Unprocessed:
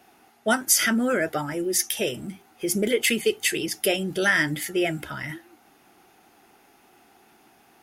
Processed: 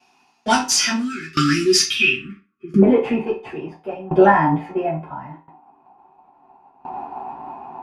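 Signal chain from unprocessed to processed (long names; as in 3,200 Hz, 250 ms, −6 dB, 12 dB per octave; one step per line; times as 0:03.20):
camcorder AGC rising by 6 dB per second
high-shelf EQ 5,000 Hz +11 dB
notch filter 7,900 Hz, Q 27
hollow resonant body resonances 990/2,500 Hz, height 18 dB, ringing for 30 ms
leveller curve on the samples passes 3
time-frequency box erased 0:01.00–0:02.81, 410–1,100 Hz
low-pass filter sweep 5,500 Hz → 830 Hz, 0:01.71–0:02.63
convolution reverb RT60 0.30 s, pre-delay 5 ms, DRR −7.5 dB
tremolo with a ramp in dB decaying 0.73 Hz, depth 20 dB
level −9.5 dB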